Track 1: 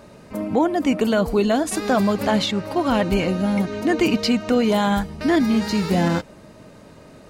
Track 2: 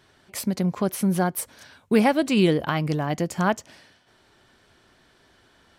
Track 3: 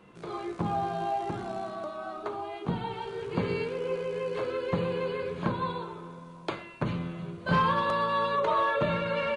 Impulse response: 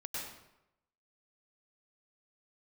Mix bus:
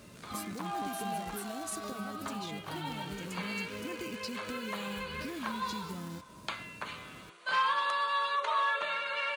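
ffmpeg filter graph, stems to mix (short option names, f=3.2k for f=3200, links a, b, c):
-filter_complex "[0:a]acompressor=threshold=-28dB:ratio=2,acrusher=bits=5:mode=log:mix=0:aa=0.000001,volume=-5dB[a];[1:a]alimiter=limit=-17.5dB:level=0:latency=1,volume=-7.5dB[b];[2:a]highpass=1.2k,volume=1dB[c];[a][b]amix=inputs=2:normalize=0,equalizer=f=1k:w=0.62:g=-12,acompressor=threshold=-40dB:ratio=4,volume=0dB[d];[c][d]amix=inputs=2:normalize=0,highpass=51,equalizer=f=9.8k:w=0.53:g=4.5"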